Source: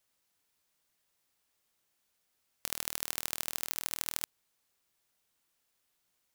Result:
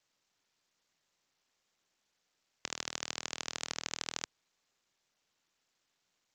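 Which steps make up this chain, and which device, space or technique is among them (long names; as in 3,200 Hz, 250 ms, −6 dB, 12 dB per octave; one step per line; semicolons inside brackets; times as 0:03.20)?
Bluetooth headset (high-pass filter 100 Hz 12 dB per octave; downsampling to 16,000 Hz; level +1 dB; SBC 64 kbit/s 32,000 Hz)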